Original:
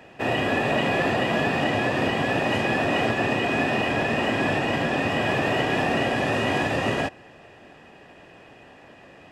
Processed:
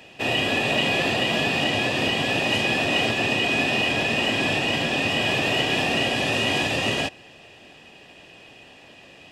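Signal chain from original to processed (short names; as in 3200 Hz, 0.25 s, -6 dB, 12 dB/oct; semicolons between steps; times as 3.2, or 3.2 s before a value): resonant high shelf 2200 Hz +8.5 dB, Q 1.5; gain -1.5 dB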